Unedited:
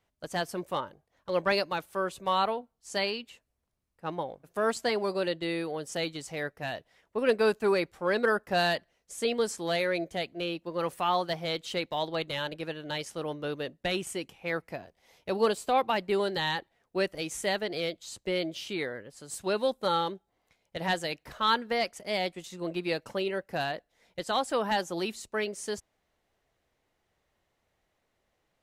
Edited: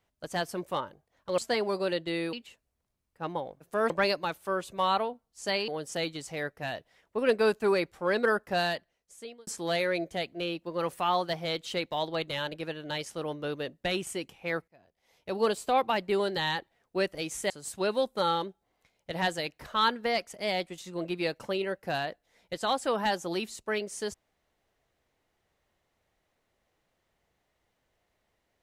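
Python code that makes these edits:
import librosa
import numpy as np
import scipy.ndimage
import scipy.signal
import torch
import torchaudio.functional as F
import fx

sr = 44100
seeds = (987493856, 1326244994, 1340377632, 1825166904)

y = fx.edit(x, sr, fx.swap(start_s=1.38, length_s=1.78, other_s=4.73, other_length_s=0.95),
    fx.fade_out_span(start_s=8.38, length_s=1.09),
    fx.fade_in_span(start_s=14.68, length_s=0.88),
    fx.cut(start_s=17.5, length_s=1.66), tone=tone)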